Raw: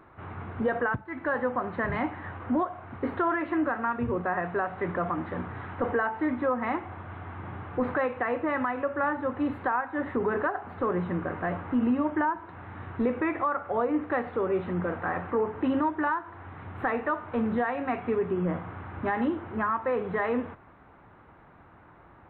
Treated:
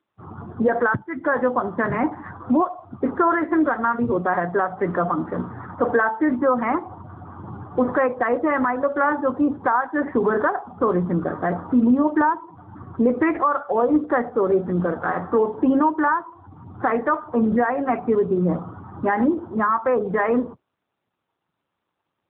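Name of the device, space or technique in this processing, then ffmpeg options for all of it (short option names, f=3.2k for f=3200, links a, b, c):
mobile call with aggressive noise cancelling: -filter_complex "[0:a]asplit=3[a][b][c];[a]afade=t=out:st=6.86:d=0.02[d];[b]equalizer=f=130:t=o:w=0.31:g=2.5,afade=t=in:st=6.86:d=0.02,afade=t=out:st=8.2:d=0.02[e];[c]afade=t=in:st=8.2:d=0.02[f];[d][e][f]amix=inputs=3:normalize=0,highpass=110,afftdn=nr=31:nf=-37,volume=8.5dB" -ar 8000 -c:a libopencore_amrnb -b:a 7950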